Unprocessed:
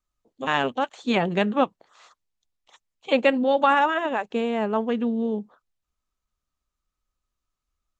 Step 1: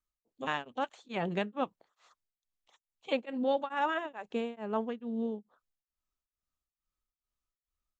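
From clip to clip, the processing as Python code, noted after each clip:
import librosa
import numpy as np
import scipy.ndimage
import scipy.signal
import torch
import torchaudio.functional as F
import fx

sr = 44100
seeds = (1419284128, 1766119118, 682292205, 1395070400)

y = x * np.abs(np.cos(np.pi * 2.3 * np.arange(len(x)) / sr))
y = F.gain(torch.from_numpy(y), -7.5).numpy()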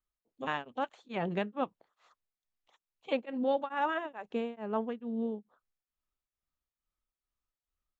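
y = fx.high_shelf(x, sr, hz=5200.0, db=-11.5)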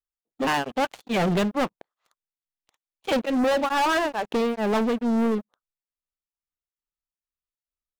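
y = fx.leveller(x, sr, passes=5)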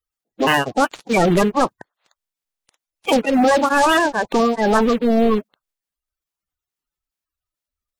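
y = fx.spec_quant(x, sr, step_db=30)
y = F.gain(torch.from_numpy(y), 8.0).numpy()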